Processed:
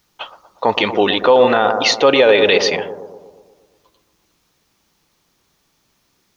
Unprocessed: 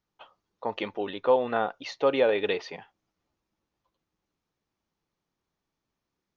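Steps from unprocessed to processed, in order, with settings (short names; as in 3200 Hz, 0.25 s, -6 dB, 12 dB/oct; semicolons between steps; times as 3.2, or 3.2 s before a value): high shelf 2200 Hz +10.5 dB; on a send: analogue delay 0.119 s, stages 1024, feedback 59%, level -11 dB; on the sum: maximiser +17.5 dB; gain -1 dB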